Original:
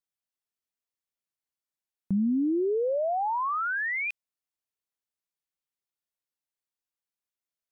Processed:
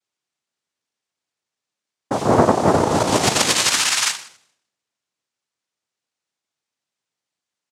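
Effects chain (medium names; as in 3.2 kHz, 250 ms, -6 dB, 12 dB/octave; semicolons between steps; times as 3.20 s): modulation noise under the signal 14 dB; in parallel at +1 dB: peak limiter -28 dBFS, peak gain reduction 9.5 dB; on the sum: comb 7.1 ms, depth 52%; plate-style reverb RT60 0.86 s, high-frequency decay 0.5×, DRR 4.5 dB; noise-vocoded speech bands 2; trim +3.5 dB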